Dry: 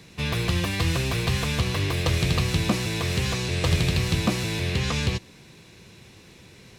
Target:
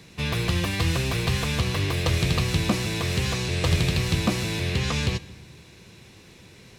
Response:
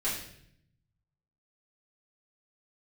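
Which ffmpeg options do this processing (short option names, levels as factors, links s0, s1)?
-filter_complex "[0:a]asplit=2[s0][s1];[1:a]atrim=start_sample=2205,adelay=126[s2];[s1][s2]afir=irnorm=-1:irlink=0,volume=0.0473[s3];[s0][s3]amix=inputs=2:normalize=0"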